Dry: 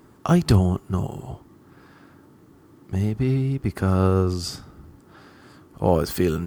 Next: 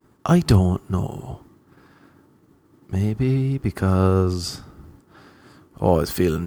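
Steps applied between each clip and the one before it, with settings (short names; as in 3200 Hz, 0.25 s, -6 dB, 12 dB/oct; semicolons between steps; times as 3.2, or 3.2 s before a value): expander -45 dBFS; gain +1.5 dB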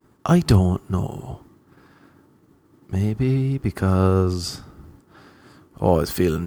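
nothing audible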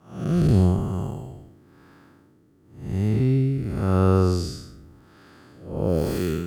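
time blur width 0.252 s; rotary speaker horn 0.9 Hz; gain +2 dB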